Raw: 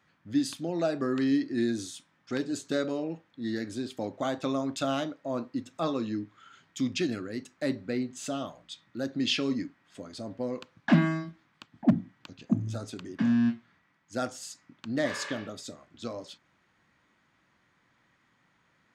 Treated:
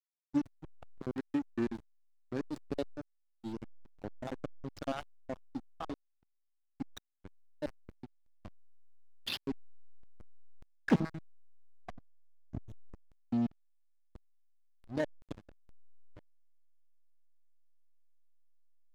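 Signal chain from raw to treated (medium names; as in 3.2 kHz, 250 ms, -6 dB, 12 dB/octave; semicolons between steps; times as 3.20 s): random holes in the spectrogram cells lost 60%; dynamic bell 200 Hz, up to -3 dB, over -44 dBFS, Q 1.1; hysteresis with a dead band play -27 dBFS; loudspeaker Doppler distortion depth 0.41 ms; trim -1.5 dB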